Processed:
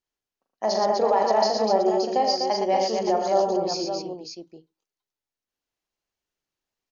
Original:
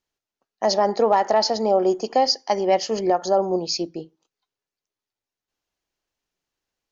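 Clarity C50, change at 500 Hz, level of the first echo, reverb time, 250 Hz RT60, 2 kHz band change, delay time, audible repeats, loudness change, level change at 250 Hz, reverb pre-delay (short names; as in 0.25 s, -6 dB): none, -1.5 dB, -6.0 dB, none, none, -3.5 dB, 41 ms, 5, -2.0 dB, -2.5 dB, none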